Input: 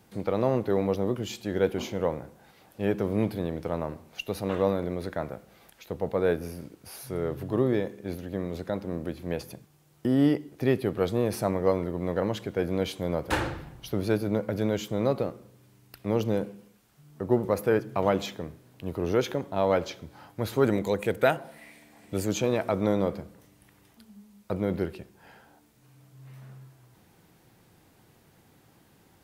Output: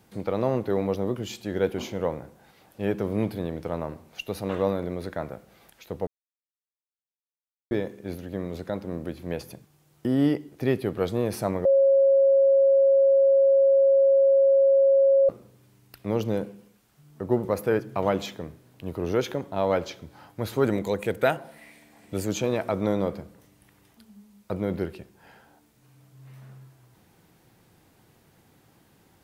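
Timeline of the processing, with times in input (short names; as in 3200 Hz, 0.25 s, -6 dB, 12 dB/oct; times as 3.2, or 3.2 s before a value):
6.07–7.71 mute
11.65–15.29 bleep 546 Hz -15 dBFS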